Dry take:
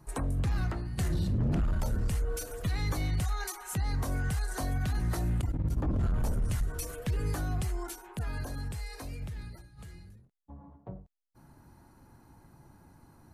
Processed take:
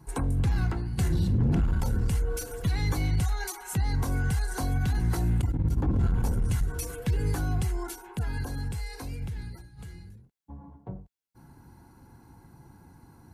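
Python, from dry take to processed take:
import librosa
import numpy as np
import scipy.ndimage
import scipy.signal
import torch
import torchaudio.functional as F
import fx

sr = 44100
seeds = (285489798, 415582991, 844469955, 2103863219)

y = fx.low_shelf(x, sr, hz=100.0, db=5.5)
y = fx.notch_comb(y, sr, f0_hz=610.0)
y = y * librosa.db_to_amplitude(3.5)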